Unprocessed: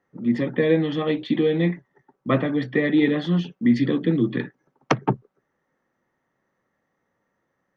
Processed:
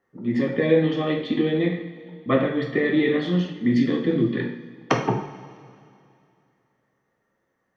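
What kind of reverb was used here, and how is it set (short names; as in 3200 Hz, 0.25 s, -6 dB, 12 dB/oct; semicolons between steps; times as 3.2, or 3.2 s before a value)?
two-slope reverb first 0.59 s, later 2.6 s, from -16 dB, DRR 0.5 dB; gain -2 dB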